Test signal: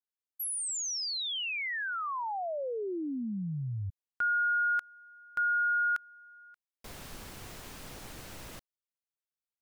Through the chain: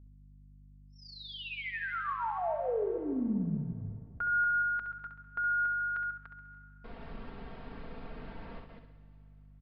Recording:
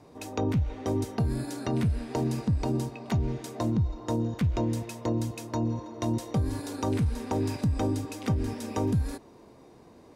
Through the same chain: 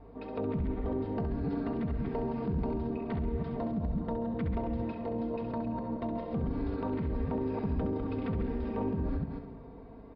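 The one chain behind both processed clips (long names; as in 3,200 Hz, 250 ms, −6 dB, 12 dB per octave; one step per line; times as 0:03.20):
delay that plays each chunk backwards 149 ms, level −5 dB
high-shelf EQ 2,300 Hz −11 dB
comb filter 4.4 ms, depth 65%
hum removal 45.36 Hz, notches 8
brickwall limiter −25 dBFS
high-frequency loss of the air 260 metres
comb and all-pass reverb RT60 3 s, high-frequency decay 1×, pre-delay 95 ms, DRR 16 dB
hum with harmonics 50 Hz, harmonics 5, −54 dBFS −8 dB per octave
flutter between parallel walls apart 11.5 metres, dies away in 0.53 s
downsampling to 11,025 Hz
highs frequency-modulated by the lows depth 0.11 ms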